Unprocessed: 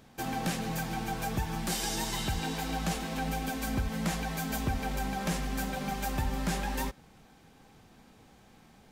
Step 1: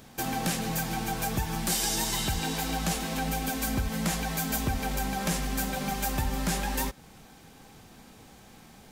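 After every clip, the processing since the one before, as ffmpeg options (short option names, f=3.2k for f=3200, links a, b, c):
-filter_complex "[0:a]highshelf=f=5.3k:g=7.5,asplit=2[a][b];[b]acompressor=threshold=-39dB:ratio=6,volume=-1.5dB[c];[a][c]amix=inputs=2:normalize=0"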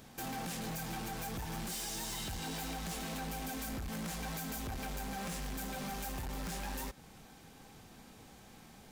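-af "alimiter=limit=-22.5dB:level=0:latency=1:release=161,volume=33.5dB,asoftclip=hard,volume=-33.5dB,volume=-4dB"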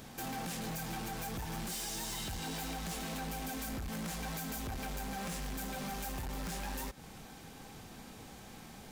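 -af "alimiter=level_in=18dB:limit=-24dB:level=0:latency=1:release=129,volume=-18dB,volume=5dB"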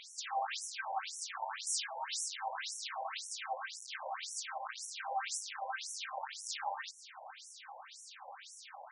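-af "afftfilt=real='re*between(b*sr/1024,720*pow(7900/720,0.5+0.5*sin(2*PI*1.9*pts/sr))/1.41,720*pow(7900/720,0.5+0.5*sin(2*PI*1.9*pts/sr))*1.41)':imag='im*between(b*sr/1024,720*pow(7900/720,0.5+0.5*sin(2*PI*1.9*pts/sr))/1.41,720*pow(7900/720,0.5+0.5*sin(2*PI*1.9*pts/sr))*1.41)':win_size=1024:overlap=0.75,volume=9dB"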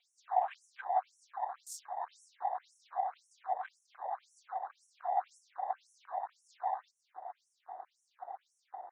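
-af "afftfilt=real='hypot(re,im)*cos(2*PI*random(0))':imag='hypot(re,im)*sin(2*PI*random(1))':win_size=512:overlap=0.75,highpass=f=730:t=q:w=7.5,afwtdn=0.00631,volume=-2.5dB"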